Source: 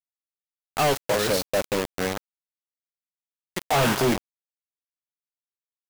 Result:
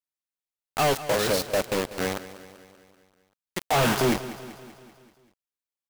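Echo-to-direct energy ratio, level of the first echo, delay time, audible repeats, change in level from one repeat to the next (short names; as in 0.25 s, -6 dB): -13.5 dB, -15.0 dB, 0.193 s, 5, -5.0 dB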